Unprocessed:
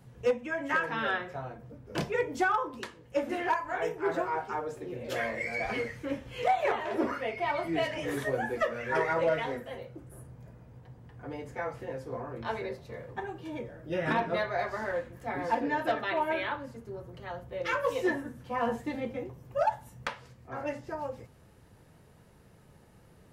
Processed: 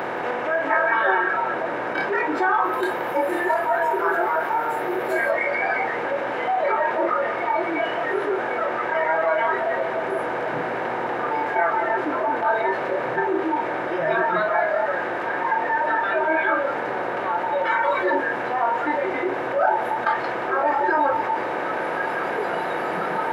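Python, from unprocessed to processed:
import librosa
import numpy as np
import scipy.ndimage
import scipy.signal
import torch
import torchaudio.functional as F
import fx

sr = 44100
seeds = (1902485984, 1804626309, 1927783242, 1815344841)

y = fx.bin_compress(x, sr, power=0.2)
y = scipy.signal.sosfilt(scipy.signal.butter(2, 81.0, 'highpass', fs=sr, output='sos'), y)
y = fx.bass_treble(y, sr, bass_db=-7, treble_db=-11)
y = fx.echo_feedback(y, sr, ms=1092, feedback_pct=45, wet_db=-12.0)
y = fx.rider(y, sr, range_db=10, speed_s=2.0)
y = fx.high_shelf(y, sr, hz=11000.0, db=11.5, at=(2.64, 5.31))
y = fx.echo_tape(y, sr, ms=176, feedback_pct=49, wet_db=-4.5, lp_hz=5900.0, drive_db=5.0, wow_cents=8)
y = fx.noise_reduce_blind(y, sr, reduce_db=16)
y = fx.env_flatten(y, sr, amount_pct=50)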